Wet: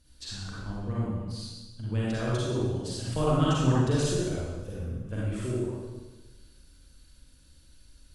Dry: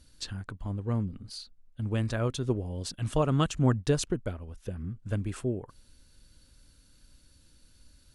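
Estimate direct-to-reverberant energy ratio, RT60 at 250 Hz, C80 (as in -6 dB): -7.5 dB, 1.4 s, -1.0 dB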